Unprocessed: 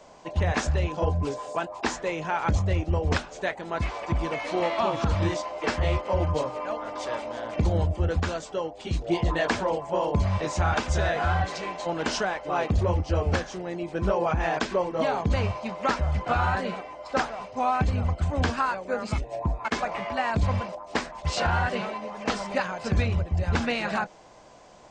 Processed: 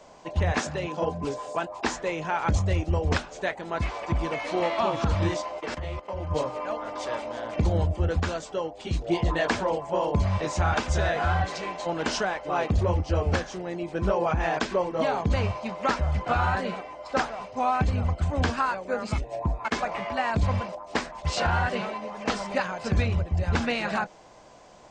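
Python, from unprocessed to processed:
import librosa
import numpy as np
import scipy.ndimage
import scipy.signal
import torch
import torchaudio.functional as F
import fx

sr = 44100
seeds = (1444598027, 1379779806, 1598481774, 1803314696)

y = fx.highpass(x, sr, hz=130.0, slope=24, at=(0.59, 1.24))
y = fx.high_shelf(y, sr, hz=6700.0, db=8.5, at=(2.54, 3.05))
y = fx.level_steps(y, sr, step_db=16, at=(5.59, 6.3), fade=0.02)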